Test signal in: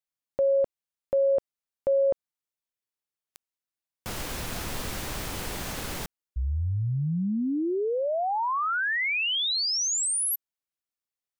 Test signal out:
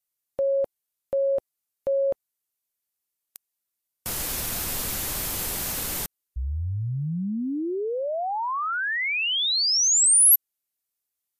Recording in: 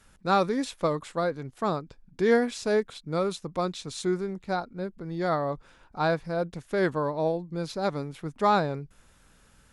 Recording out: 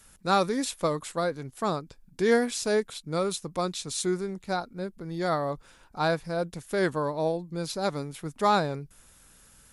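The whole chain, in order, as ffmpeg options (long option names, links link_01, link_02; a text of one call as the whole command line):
ffmpeg -i in.wav -af "aemphasis=mode=production:type=50fm" -ar 32000 -c:a libmp3lame -b:a 80k out.mp3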